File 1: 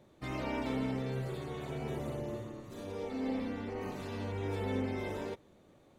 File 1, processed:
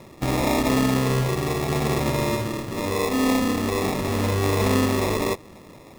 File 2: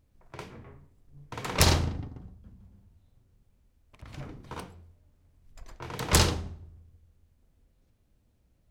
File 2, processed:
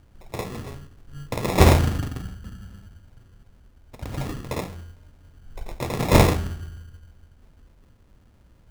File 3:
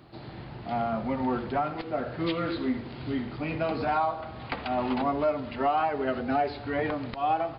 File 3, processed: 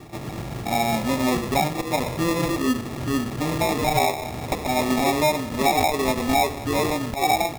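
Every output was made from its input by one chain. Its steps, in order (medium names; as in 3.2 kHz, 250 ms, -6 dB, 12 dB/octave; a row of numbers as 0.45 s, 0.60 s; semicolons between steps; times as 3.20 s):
in parallel at +0.5 dB: compression, threshold -38 dBFS; on the sum: sample-and-hold 29×; normalise loudness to -23 LUFS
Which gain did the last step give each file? +10.5 dB, +6.5 dB, +4.0 dB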